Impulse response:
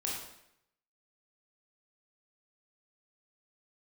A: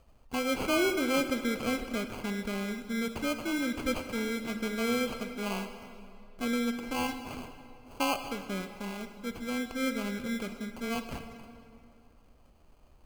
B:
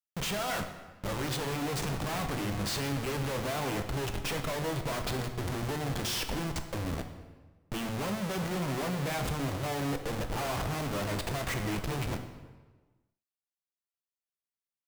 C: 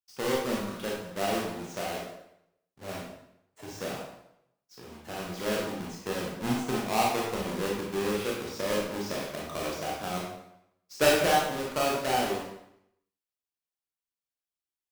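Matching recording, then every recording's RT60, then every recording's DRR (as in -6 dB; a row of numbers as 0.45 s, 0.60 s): C; 2.6 s, 1.3 s, 0.80 s; 7.5 dB, 5.5 dB, -4.0 dB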